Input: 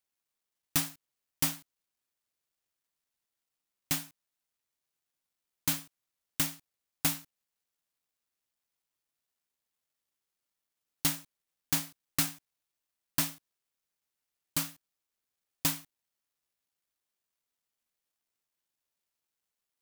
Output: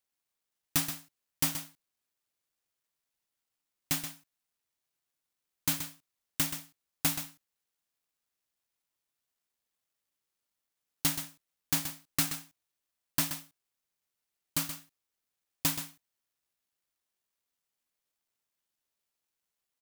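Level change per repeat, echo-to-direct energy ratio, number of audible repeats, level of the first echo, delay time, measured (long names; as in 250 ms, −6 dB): repeats not evenly spaced, −9.5 dB, 1, −9.5 dB, 127 ms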